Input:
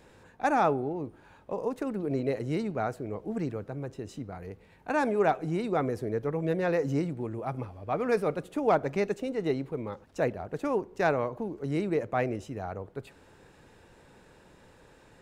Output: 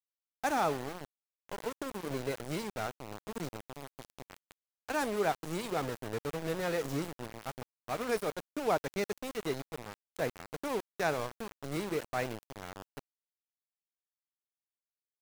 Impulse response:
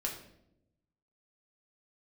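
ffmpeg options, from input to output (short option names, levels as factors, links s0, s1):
-af "aemphasis=mode=production:type=75kf,aeval=exprs='val(0)*gte(abs(val(0)),0.0335)':c=same,volume=0.501"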